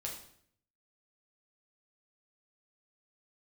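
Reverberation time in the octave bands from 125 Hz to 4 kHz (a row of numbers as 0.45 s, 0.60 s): 0.95 s, 0.80 s, 0.70 s, 0.60 s, 0.60 s, 0.55 s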